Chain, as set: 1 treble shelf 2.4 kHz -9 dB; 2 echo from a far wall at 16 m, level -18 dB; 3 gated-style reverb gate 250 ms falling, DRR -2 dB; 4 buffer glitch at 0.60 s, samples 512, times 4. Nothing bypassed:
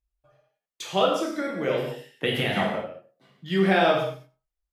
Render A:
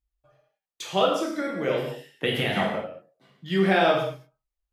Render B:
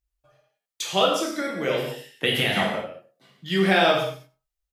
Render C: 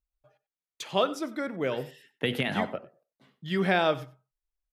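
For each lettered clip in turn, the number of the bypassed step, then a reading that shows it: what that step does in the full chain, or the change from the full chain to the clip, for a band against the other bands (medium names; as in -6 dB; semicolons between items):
2, momentary loudness spread change -1 LU; 1, 8 kHz band +7.5 dB; 3, momentary loudness spread change +4 LU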